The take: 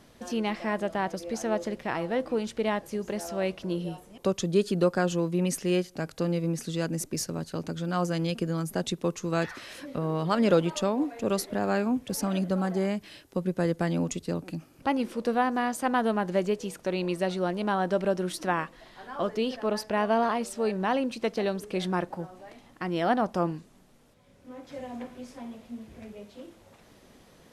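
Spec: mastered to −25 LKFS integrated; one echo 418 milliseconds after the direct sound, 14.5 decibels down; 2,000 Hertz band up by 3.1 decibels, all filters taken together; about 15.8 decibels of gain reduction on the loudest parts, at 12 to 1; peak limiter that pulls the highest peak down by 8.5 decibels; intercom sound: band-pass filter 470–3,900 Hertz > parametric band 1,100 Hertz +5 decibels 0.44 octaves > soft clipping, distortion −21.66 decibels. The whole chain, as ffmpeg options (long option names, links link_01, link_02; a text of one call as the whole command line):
ffmpeg -i in.wav -af "equalizer=frequency=2000:width_type=o:gain=3.5,acompressor=threshold=-33dB:ratio=12,alimiter=level_in=5dB:limit=-24dB:level=0:latency=1,volume=-5dB,highpass=470,lowpass=3900,equalizer=frequency=1100:width_type=o:width=0.44:gain=5,aecho=1:1:418:0.188,asoftclip=threshold=-28.5dB,volume=19dB" out.wav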